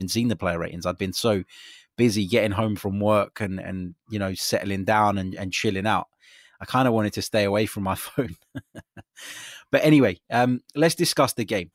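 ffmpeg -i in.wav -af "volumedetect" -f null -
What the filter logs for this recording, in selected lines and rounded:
mean_volume: -24.1 dB
max_volume: -6.2 dB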